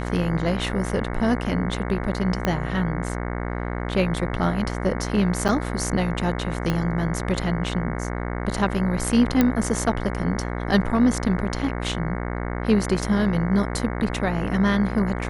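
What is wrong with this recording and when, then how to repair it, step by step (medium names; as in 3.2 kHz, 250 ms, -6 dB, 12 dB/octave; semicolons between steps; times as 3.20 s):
buzz 60 Hz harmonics 37 -28 dBFS
2.45 s: pop -9 dBFS
5.48–5.49 s: dropout 7.8 ms
6.70 s: pop -11 dBFS
9.41 s: pop -6 dBFS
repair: de-click; de-hum 60 Hz, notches 37; interpolate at 5.48 s, 7.8 ms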